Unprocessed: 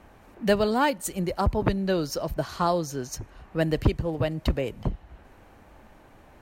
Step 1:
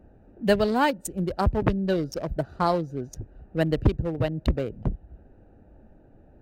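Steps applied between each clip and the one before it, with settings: Wiener smoothing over 41 samples; gain +1.5 dB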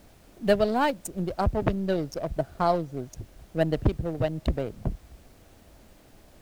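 half-wave gain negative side -3 dB; bell 670 Hz +6 dB 0.3 oct; added noise pink -57 dBFS; gain -1.5 dB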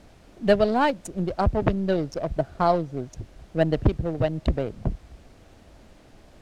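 air absorption 54 m; gain +3 dB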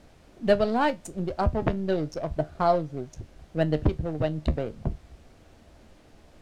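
resonator 76 Hz, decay 0.18 s, harmonics all, mix 60%; gain +1 dB

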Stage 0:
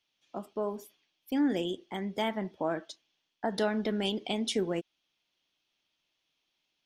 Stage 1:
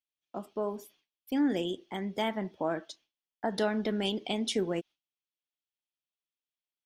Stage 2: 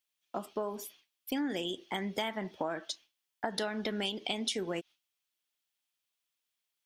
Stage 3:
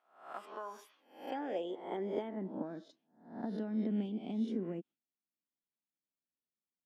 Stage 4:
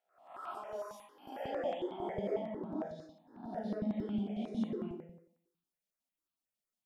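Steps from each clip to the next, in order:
gate with hold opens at -56 dBFS
tilt shelf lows -4.5 dB, about 810 Hz; compressor, threshold -36 dBFS, peak gain reduction 11 dB; gain +5 dB
spectral swells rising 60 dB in 0.53 s; band-pass sweep 1900 Hz -> 220 Hz, 0.41–2.64; gain +4 dB
resonator 56 Hz, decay 0.88 s, harmonics odd, mix 50%; digital reverb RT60 0.73 s, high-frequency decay 0.75×, pre-delay 80 ms, DRR -8.5 dB; step phaser 11 Hz 310–1900 Hz; gain +1 dB

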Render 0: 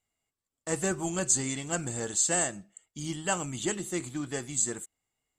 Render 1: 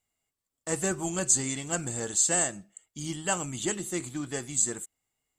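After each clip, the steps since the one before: high shelf 8300 Hz +5 dB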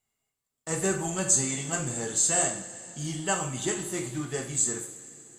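two-slope reverb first 0.47 s, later 3.7 s, from -18 dB, DRR 0.5 dB; gain -1.5 dB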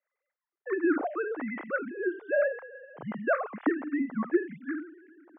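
sine-wave speech; mistuned SSB -90 Hz 340–2000 Hz

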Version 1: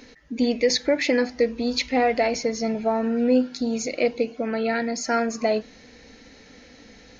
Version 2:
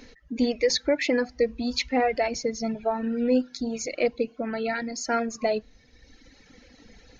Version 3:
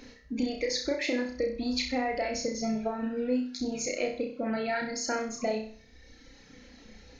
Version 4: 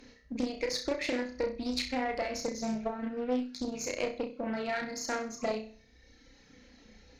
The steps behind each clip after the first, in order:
reverb removal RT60 1.6 s; low shelf 61 Hz +11.5 dB; gain -2 dB
compressor 5:1, threshold -26 dBFS, peak gain reduction 8.5 dB; on a send: flutter echo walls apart 5.5 m, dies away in 0.47 s; on the sum: gain -2 dB
added harmonics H 4 -22 dB, 7 -28 dB, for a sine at -16.5 dBFS; Doppler distortion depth 0.31 ms; gain -2 dB

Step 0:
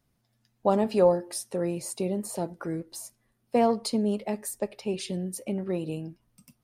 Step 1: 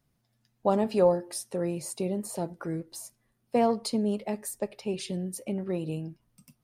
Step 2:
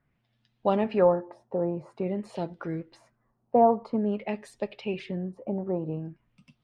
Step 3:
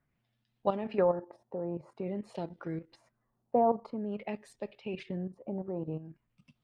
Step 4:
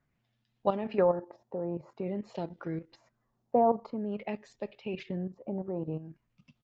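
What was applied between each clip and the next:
bell 150 Hz +5 dB 0.22 oct; gain -1.5 dB
LFO low-pass sine 0.49 Hz 830–3500 Hz
level quantiser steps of 11 dB; gain -2 dB
downsampling 16000 Hz; gain +1.5 dB

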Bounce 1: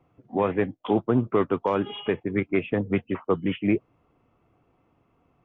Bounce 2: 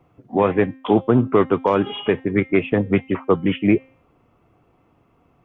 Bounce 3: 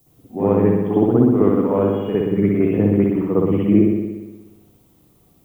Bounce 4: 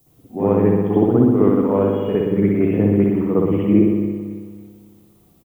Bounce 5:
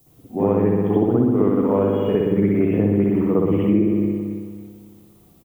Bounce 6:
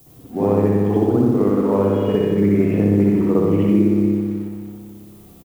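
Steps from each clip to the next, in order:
de-hum 263.9 Hz, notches 28; gain +6.5 dB
tilt shelf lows +9 dB, about 840 Hz; added noise violet -47 dBFS; spring tank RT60 1.2 s, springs 59 ms, chirp 75 ms, DRR -9.5 dB; gain -14 dB
feedback echo 0.275 s, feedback 37%, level -13 dB
compressor 4:1, threshold -16 dBFS, peak gain reduction 7 dB; gain +2 dB
G.711 law mismatch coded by mu; on a send: echo 89 ms -5.5 dB

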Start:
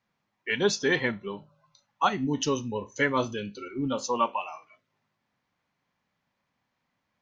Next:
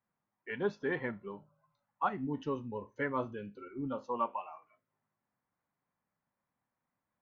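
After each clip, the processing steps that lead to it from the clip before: Chebyshev low-pass 1400 Hz, order 2; gain -7.5 dB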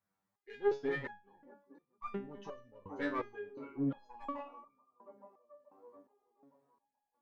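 one diode to ground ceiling -29.5 dBFS; band-limited delay 0.432 s, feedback 61%, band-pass 420 Hz, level -10 dB; stepped resonator 2.8 Hz 97–1200 Hz; gain +10 dB

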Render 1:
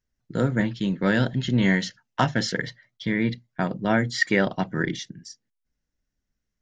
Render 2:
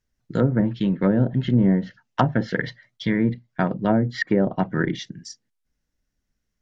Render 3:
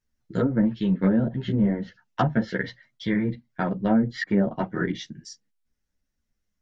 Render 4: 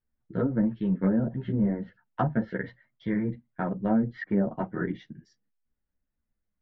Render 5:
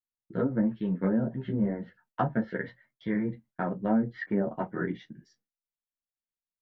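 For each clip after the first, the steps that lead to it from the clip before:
treble ducked by the level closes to 600 Hz, closed at -17.5 dBFS; gain +3.5 dB
ensemble effect
LPF 1700 Hz 12 dB/oct; gain -3.5 dB
low shelf 120 Hz -9 dB; doubler 23 ms -13 dB; gate with hold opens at -56 dBFS

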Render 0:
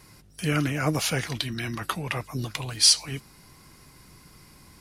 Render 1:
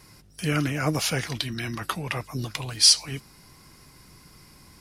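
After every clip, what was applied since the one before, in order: bell 5200 Hz +3.5 dB 0.24 oct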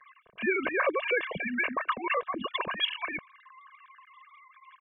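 sine-wave speech; comb 1.8 ms, depth 89%; compressor 2.5:1, threshold -25 dBFS, peak gain reduction 7.5 dB; gain -1 dB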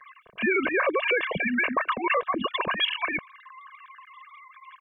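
limiter -22 dBFS, peak gain reduction 5.5 dB; gain +6.5 dB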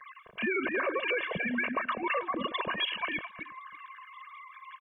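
reverse delay 0.143 s, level -10 dB; compressor 1.5:1, threshold -39 dBFS, peak gain reduction 7 dB; echo 0.335 s -20.5 dB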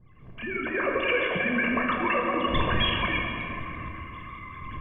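opening faded in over 1.01 s; wind noise 130 Hz -44 dBFS; shoebox room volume 150 m³, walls hard, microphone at 0.41 m; gain +3 dB

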